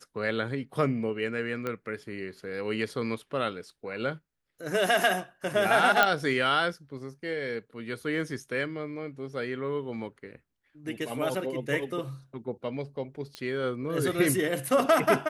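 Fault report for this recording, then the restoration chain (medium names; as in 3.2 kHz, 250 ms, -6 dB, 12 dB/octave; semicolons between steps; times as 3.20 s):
1.67 s: pop -19 dBFS
6.03 s: pop -7 dBFS
13.35 s: pop -22 dBFS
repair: de-click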